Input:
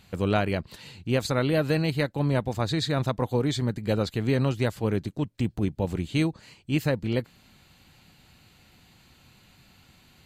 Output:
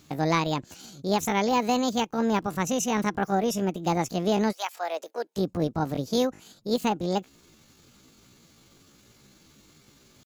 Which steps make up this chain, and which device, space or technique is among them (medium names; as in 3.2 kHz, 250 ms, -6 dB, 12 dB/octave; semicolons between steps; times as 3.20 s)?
chipmunk voice (pitch shift +8 st); 4.51–5.36 s: high-pass 880 Hz -> 340 Hz 24 dB/octave